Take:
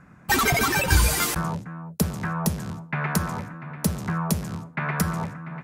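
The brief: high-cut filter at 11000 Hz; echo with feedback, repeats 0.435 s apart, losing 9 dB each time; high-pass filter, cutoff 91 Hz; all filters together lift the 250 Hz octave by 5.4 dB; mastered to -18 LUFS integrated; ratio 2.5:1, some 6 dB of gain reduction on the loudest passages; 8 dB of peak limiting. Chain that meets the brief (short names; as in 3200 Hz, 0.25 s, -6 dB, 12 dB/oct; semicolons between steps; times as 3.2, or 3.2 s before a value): HPF 91 Hz; LPF 11000 Hz; bell 250 Hz +8.5 dB; compressor 2.5:1, threshold -23 dBFS; limiter -18 dBFS; feedback echo 0.435 s, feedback 35%, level -9 dB; gain +10.5 dB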